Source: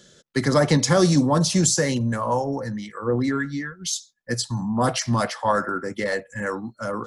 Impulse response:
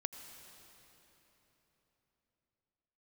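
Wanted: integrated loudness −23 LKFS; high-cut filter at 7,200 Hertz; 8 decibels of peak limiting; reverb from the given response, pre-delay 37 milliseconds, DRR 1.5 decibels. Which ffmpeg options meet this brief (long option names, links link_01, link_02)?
-filter_complex "[0:a]lowpass=7200,alimiter=limit=-14dB:level=0:latency=1,asplit=2[link_01][link_02];[1:a]atrim=start_sample=2205,adelay=37[link_03];[link_02][link_03]afir=irnorm=-1:irlink=0,volume=-0.5dB[link_04];[link_01][link_04]amix=inputs=2:normalize=0,volume=-0.5dB"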